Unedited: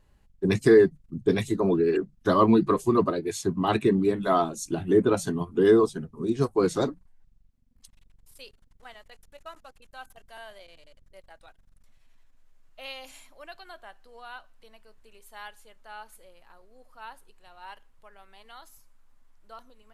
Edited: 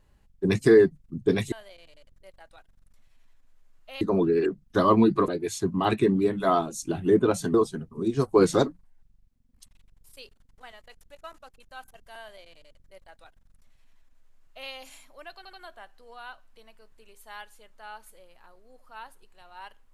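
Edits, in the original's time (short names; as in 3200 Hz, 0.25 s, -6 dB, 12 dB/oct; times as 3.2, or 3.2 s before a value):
2.79–3.11 cut
5.37–5.76 cut
6.5–6.85 gain +4 dB
10.42–12.91 copy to 1.52
13.59 stutter 0.08 s, 3 plays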